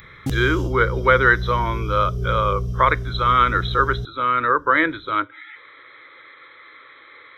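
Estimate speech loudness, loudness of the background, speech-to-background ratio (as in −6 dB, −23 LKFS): −19.5 LKFS, −27.5 LKFS, 8.0 dB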